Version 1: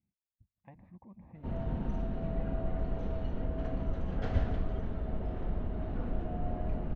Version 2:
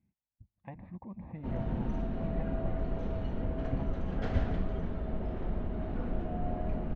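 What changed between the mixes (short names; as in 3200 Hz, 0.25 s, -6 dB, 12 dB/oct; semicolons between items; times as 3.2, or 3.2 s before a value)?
speech +8.5 dB; reverb: on, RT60 0.55 s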